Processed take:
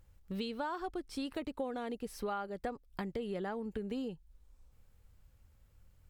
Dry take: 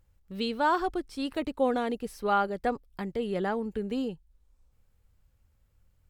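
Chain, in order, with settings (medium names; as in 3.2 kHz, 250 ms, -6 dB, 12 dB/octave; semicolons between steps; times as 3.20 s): compression 6:1, threshold -39 dBFS, peak gain reduction 17.5 dB; trim +3 dB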